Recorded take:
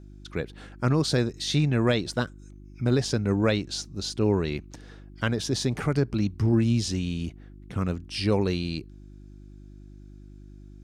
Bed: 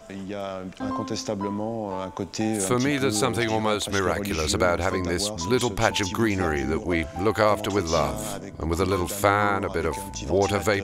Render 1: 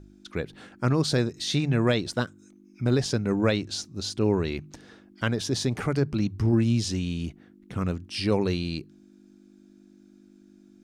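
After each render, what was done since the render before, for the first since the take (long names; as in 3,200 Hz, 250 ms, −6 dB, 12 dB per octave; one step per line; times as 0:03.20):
hum removal 50 Hz, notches 3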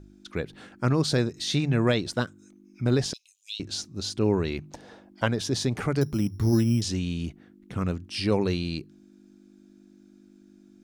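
0:03.13–0:03.60: Butterworth high-pass 2,800 Hz 72 dB per octave
0:04.62–0:05.26: flat-topped bell 700 Hz +9 dB 1.2 octaves
0:06.01–0:06.82: bad sample-rate conversion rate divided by 8×, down filtered, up hold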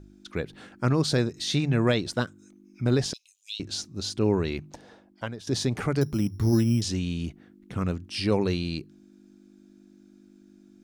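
0:04.56–0:05.47: fade out linear, to −15 dB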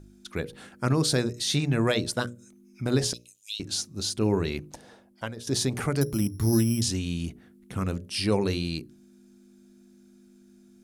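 parametric band 11,000 Hz +13 dB 0.88 octaves
mains-hum notches 60/120/180/240/300/360/420/480/540/600 Hz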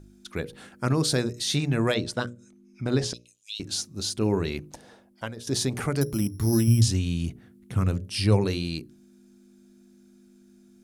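0:01.94–0:03.56: high-frequency loss of the air 57 metres
0:06.67–0:08.45: parametric band 110 Hz +11.5 dB 0.66 octaves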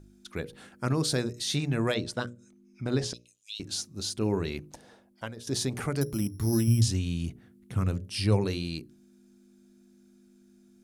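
level −3.5 dB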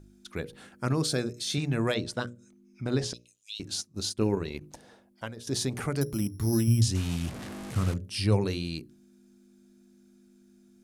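0:01.07–0:01.58: notch comb filter 960 Hz
0:03.74–0:04.61: transient designer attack +4 dB, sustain −11 dB
0:06.95–0:07.94: linear delta modulator 64 kbit/s, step −33.5 dBFS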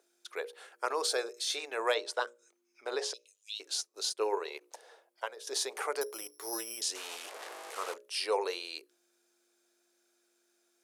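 elliptic high-pass filter 430 Hz, stop band 60 dB
dynamic equaliser 930 Hz, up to +6 dB, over −51 dBFS, Q 2.1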